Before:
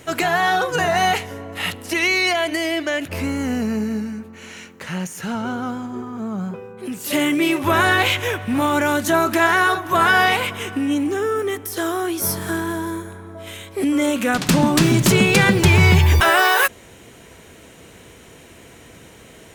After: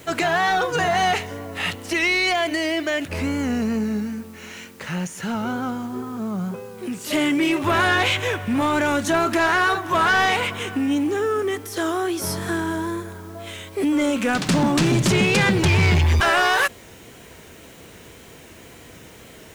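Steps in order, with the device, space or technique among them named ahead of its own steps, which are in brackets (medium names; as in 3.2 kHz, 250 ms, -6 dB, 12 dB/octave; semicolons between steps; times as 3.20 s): compact cassette (saturation -12.5 dBFS, distortion -13 dB; low-pass 8.7 kHz 12 dB/octave; wow and flutter; white noise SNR 31 dB)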